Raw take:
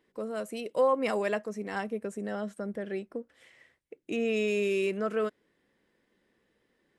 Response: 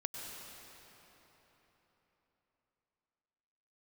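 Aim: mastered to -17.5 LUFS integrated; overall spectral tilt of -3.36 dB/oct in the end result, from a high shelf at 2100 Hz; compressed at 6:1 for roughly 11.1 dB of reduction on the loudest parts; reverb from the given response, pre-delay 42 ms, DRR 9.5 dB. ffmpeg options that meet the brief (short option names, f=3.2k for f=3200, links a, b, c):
-filter_complex "[0:a]highshelf=f=2.1k:g=-8.5,acompressor=threshold=-33dB:ratio=6,asplit=2[a][b];[1:a]atrim=start_sample=2205,adelay=42[c];[b][c]afir=irnorm=-1:irlink=0,volume=-10dB[d];[a][d]amix=inputs=2:normalize=0,volume=20dB"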